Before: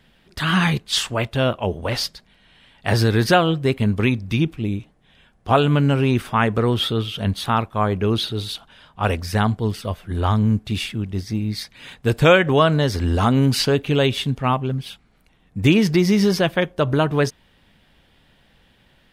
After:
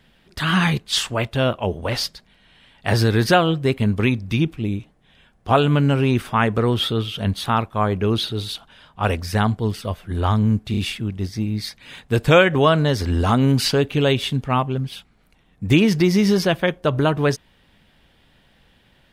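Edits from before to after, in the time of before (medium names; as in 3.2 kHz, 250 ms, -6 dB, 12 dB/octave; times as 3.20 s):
10.71 s: stutter 0.03 s, 3 plays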